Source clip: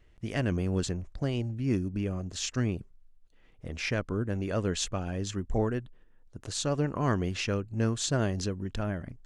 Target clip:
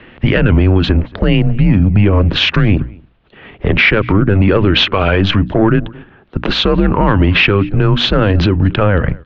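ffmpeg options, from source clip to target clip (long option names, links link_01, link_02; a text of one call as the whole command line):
ffmpeg -i in.wav -filter_complex "[0:a]asplit=3[link_01][link_02][link_03];[link_01]afade=type=out:start_time=2.77:duration=0.02[link_04];[link_02]afreqshift=38,afade=type=in:start_time=2.77:duration=0.02,afade=type=out:start_time=3.75:duration=0.02[link_05];[link_03]afade=type=in:start_time=3.75:duration=0.02[link_06];[link_04][link_05][link_06]amix=inputs=3:normalize=0,asplit=3[link_07][link_08][link_09];[link_07]afade=type=out:start_time=4.76:duration=0.02[link_10];[link_08]equalizer=frequency=2500:width=0.31:gain=9,afade=type=in:start_time=4.76:duration=0.02,afade=type=out:start_time=5.2:duration=0.02[link_11];[link_09]afade=type=in:start_time=5.2:duration=0.02[link_12];[link_10][link_11][link_12]amix=inputs=3:normalize=0,acompressor=threshold=-30dB:ratio=6,asoftclip=type=tanh:threshold=-26.5dB,highpass=frequency=150:width_type=q:width=0.5412,highpass=frequency=150:width_type=q:width=1.307,lowpass=frequency=3500:width_type=q:width=0.5176,lowpass=frequency=3500:width_type=q:width=0.7071,lowpass=frequency=3500:width_type=q:width=1.932,afreqshift=-100,bandreject=frequency=60:width_type=h:width=6,bandreject=frequency=120:width_type=h:width=6,bandreject=frequency=180:width_type=h:width=6,bandreject=frequency=240:width_type=h:width=6,bandreject=frequency=300:width_type=h:width=6,asplit=2[link_13][link_14];[link_14]adelay=227.4,volume=-27dB,highshelf=frequency=4000:gain=-5.12[link_15];[link_13][link_15]amix=inputs=2:normalize=0,alimiter=level_in=32dB:limit=-1dB:release=50:level=0:latency=1,volume=-1dB" out.wav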